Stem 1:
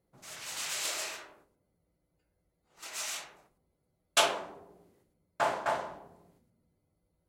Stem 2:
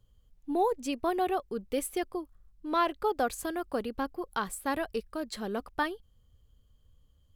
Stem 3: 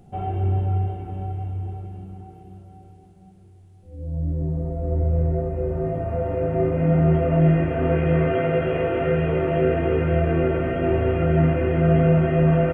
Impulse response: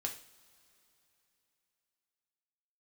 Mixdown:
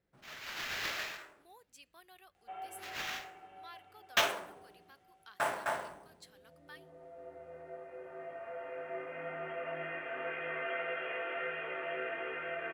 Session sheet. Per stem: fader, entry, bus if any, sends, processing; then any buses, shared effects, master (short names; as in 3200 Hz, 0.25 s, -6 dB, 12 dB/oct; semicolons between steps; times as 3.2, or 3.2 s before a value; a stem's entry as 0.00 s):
-5.5 dB, 0.00 s, send -21.5 dB, sample-rate reducer 9300 Hz, jitter 0%
-12.5 dB, 0.90 s, send -18.5 dB, differentiator
-9.0 dB, 2.35 s, no send, HPF 880 Hz 12 dB/oct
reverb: on, pre-delay 3 ms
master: EQ curve 1000 Hz 0 dB, 1700 Hz +6 dB, 11000 Hz -5 dB